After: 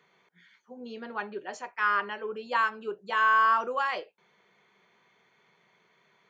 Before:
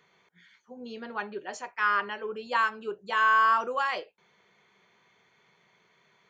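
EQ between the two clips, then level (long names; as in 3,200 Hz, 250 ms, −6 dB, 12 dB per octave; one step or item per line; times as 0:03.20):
high-pass filter 130 Hz 12 dB per octave
high-shelf EQ 4,500 Hz −5.5 dB
0.0 dB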